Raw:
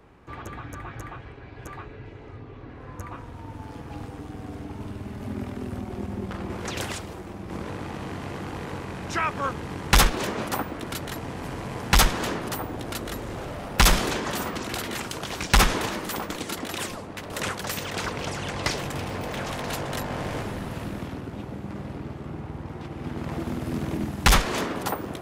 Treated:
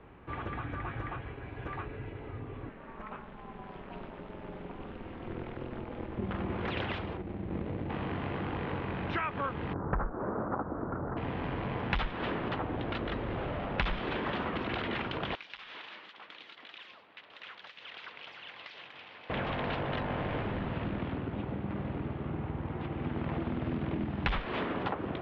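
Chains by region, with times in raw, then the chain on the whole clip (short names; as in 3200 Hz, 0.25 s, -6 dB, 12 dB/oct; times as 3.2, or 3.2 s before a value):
2.69–6.19 low shelf 280 Hz -7.5 dB + ring modulator 120 Hz
7.17–7.9 median filter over 41 samples + LPF 5700 Hz
9.73–11.17 elliptic low-pass 1400 Hz, stop band 60 dB + Doppler distortion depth 0.38 ms
15.35–19.3 differentiator + compressor 5:1, threshold -36 dBFS
whole clip: steep low-pass 3400 Hz 36 dB/oct; compressor 5:1, threshold -30 dBFS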